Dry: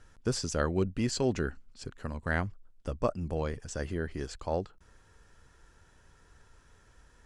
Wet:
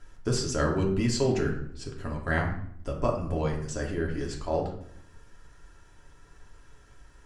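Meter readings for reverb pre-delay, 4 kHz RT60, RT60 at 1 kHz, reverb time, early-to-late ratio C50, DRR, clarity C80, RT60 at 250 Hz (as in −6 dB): 3 ms, 0.50 s, 0.60 s, 0.65 s, 6.5 dB, −1.5 dB, 10.0 dB, 1.0 s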